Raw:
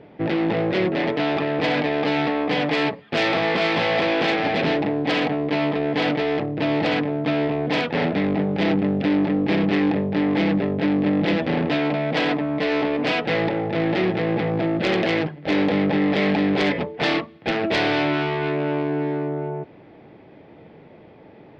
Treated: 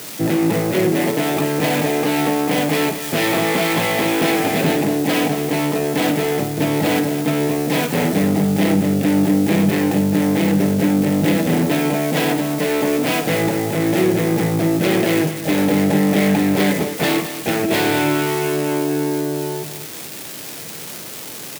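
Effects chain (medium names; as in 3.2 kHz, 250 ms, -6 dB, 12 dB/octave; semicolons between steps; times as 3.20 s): zero-crossing glitches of -17.5 dBFS; high-pass 98 Hz; bass shelf 370 Hz +7.5 dB; doubling 19 ms -13.5 dB; multi-tap echo 52/221 ms -10.5/-11.5 dB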